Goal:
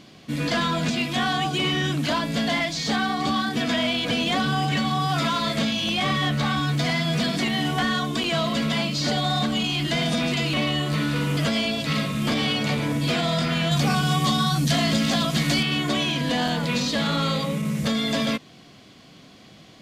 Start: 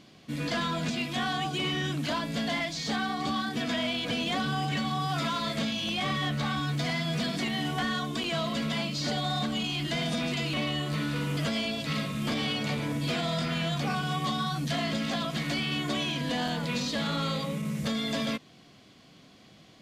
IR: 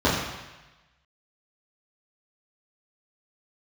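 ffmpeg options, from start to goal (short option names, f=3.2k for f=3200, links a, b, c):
-filter_complex "[0:a]asettb=1/sr,asplit=3[a][b][c];[a]atrim=end=13.714[d];[b]atrim=start=13.71:end=15.63,asetpts=PTS-STARTPTS,afade=t=in:d=0.004:c=qsin,afade=t=out:st=1.916:d=0.004:c=qsin,bass=f=250:g=4,treble=f=4k:g=7[e];[c]atrim=start=15.626[f];[d][e]acrossfade=d=0.004:c1=hsin:c2=qsin[g];[g][f]acrossfade=d=0.004:c1=qsin:c2=hsin,volume=6.5dB"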